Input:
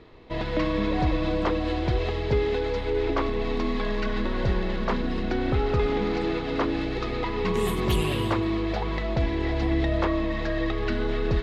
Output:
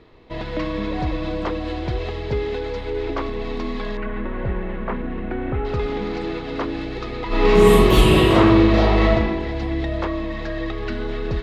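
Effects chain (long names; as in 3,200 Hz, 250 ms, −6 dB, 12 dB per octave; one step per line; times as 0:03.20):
0:03.97–0:05.65: low-pass filter 2,500 Hz 24 dB per octave
0:07.27–0:09.12: thrown reverb, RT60 1.2 s, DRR −11.5 dB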